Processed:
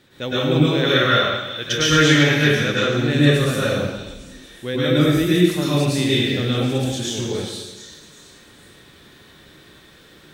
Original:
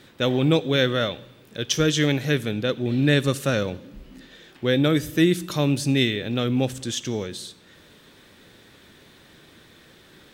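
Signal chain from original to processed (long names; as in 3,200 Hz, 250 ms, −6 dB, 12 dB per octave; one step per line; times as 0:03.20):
0:00.83–0:03.03: parametric band 1,700 Hz +8.5 dB 1.9 octaves
echo through a band-pass that steps 364 ms, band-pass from 3,800 Hz, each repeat 0.7 octaves, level −10 dB
dense smooth reverb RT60 1.1 s, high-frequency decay 0.85×, pre-delay 95 ms, DRR −8.5 dB
level −5.5 dB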